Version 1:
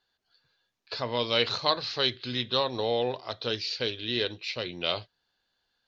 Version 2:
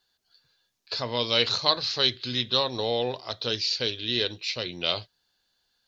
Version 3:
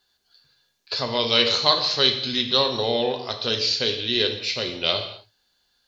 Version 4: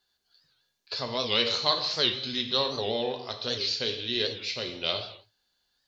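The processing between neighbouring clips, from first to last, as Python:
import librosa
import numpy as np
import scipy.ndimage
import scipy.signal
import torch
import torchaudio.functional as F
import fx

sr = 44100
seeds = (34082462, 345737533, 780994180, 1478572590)

y1 = fx.bass_treble(x, sr, bass_db=2, treble_db=10)
y2 = fx.rev_gated(y1, sr, seeds[0], gate_ms=280, shape='falling', drr_db=5.0)
y2 = F.gain(torch.from_numpy(y2), 3.5).numpy()
y3 = fx.record_warp(y2, sr, rpm=78.0, depth_cents=160.0)
y3 = F.gain(torch.from_numpy(y3), -6.5).numpy()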